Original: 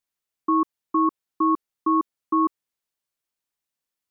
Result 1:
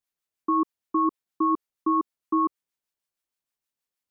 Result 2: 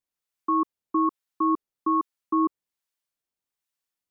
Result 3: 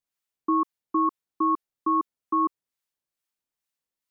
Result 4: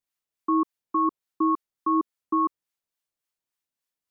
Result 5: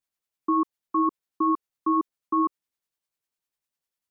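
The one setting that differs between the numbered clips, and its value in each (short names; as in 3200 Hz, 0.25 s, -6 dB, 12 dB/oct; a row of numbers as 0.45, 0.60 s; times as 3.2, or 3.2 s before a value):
harmonic tremolo, rate: 6.4, 1.2, 2.3, 3.5, 10 Hz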